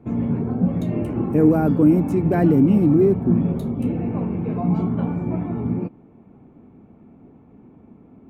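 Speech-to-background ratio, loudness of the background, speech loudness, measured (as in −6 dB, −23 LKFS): 6.0 dB, −24.0 LKFS, −18.0 LKFS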